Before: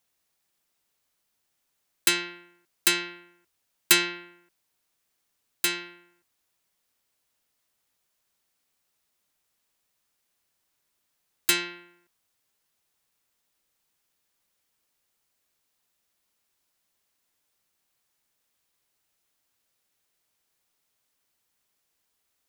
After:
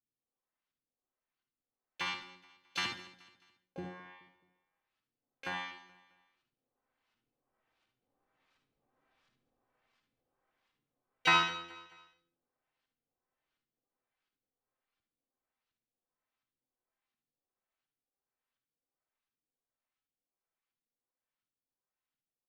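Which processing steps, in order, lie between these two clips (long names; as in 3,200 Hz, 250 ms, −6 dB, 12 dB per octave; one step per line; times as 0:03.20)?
source passing by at 0:08.96, 11 m/s, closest 11 metres
comb filter 3.9 ms, depth 67%
auto-filter low-pass saw up 1.4 Hz 220–3,500 Hz
pitch-shifted copies added −12 semitones −2 dB, +7 semitones −5 dB
repeating echo 214 ms, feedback 42%, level −19 dB
on a send at −4 dB: convolution reverb RT60 0.45 s, pre-delay 48 ms
on the sum: level −1 dB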